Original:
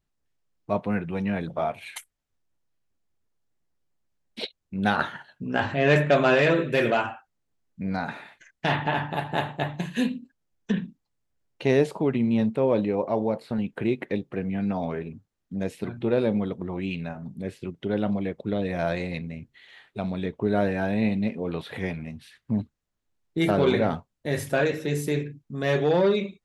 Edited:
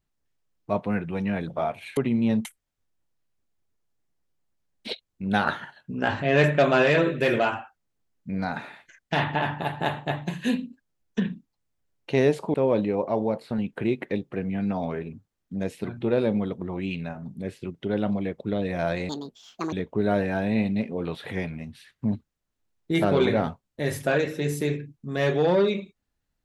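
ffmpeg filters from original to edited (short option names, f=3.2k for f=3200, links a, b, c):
-filter_complex "[0:a]asplit=6[a][b][c][d][e][f];[a]atrim=end=1.972[g];[b]atrim=start=12.058:end=12.542[h];[c]atrim=start=1.968:end=12.062[i];[d]atrim=start=12.538:end=19.094[j];[e]atrim=start=19.09:end=20.19,asetpts=PTS-STARTPTS,asetrate=76293,aresample=44100,atrim=end_sample=28040,asetpts=PTS-STARTPTS[k];[f]atrim=start=20.186[l];[g][h]acrossfade=d=0.004:c1=hsin:c2=hsin[m];[m][i]acrossfade=d=0.004:c1=hsin:c2=hsin[n];[n][j]acrossfade=d=0.004:c1=hsin:c2=hsin[o];[o][k]acrossfade=d=0.004:c1=hsin:c2=hsin[p];[p][l]acrossfade=d=0.004:c1=hsin:c2=hsin"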